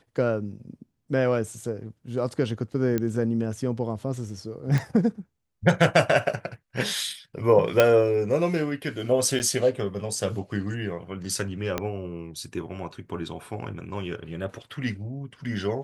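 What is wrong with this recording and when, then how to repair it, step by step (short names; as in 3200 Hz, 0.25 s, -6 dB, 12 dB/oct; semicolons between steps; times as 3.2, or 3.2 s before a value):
2.98 pop -13 dBFS
4.78 pop -14 dBFS
7.8 pop -4 dBFS
9.39–9.4 gap 9.5 ms
11.78 pop -11 dBFS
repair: de-click; interpolate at 9.39, 9.5 ms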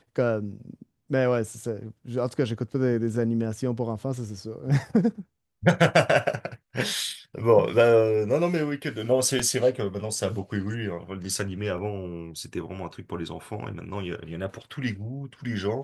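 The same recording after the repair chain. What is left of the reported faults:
11.78 pop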